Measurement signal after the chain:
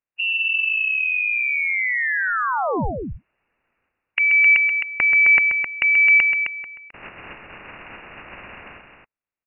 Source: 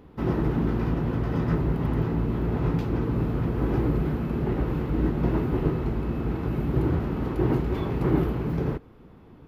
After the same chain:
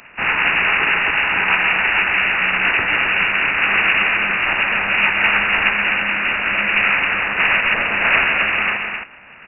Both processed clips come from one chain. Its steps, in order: spectral peaks clipped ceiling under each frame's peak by 26 dB; loudspeakers at several distances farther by 45 m -9 dB, 90 m -6 dB; frequency inversion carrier 2.8 kHz; trim +6.5 dB

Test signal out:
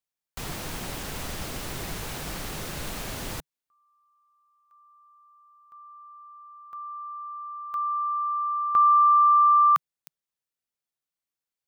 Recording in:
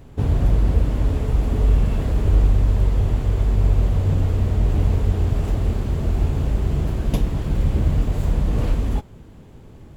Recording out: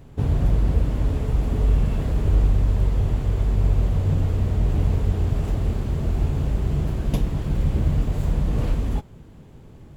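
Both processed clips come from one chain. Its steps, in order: peaking EQ 150 Hz +3.5 dB 0.47 oct; trim -2.5 dB

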